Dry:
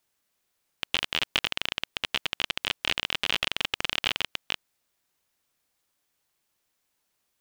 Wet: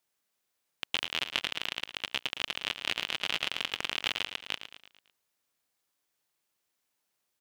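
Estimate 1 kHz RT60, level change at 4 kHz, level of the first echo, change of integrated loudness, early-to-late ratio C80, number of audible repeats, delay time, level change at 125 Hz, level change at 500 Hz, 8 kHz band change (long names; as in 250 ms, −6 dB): no reverb audible, −4.0 dB, −10.5 dB, −4.0 dB, no reverb audible, 4, 111 ms, −7.5 dB, −4.5 dB, −4.0 dB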